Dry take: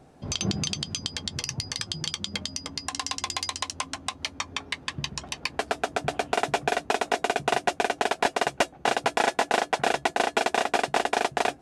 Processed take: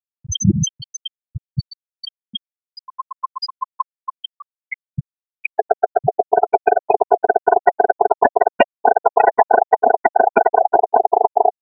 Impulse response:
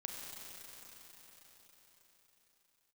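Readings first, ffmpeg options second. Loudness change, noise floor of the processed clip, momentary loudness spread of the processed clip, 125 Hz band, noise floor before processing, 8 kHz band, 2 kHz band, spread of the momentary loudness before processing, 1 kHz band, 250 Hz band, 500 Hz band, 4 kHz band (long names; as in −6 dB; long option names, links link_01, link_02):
+11.0 dB, below −85 dBFS, 17 LU, +10.5 dB, −52 dBFS, can't be measured, +2.5 dB, 7 LU, +12.0 dB, +8.0 dB, +12.0 dB, −2.0 dB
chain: -af "afftfilt=real='re*gte(hypot(re,im),0.224)':imag='im*gte(hypot(re,im),0.224)':win_size=1024:overlap=0.75,apsyclip=17dB,volume=-2dB"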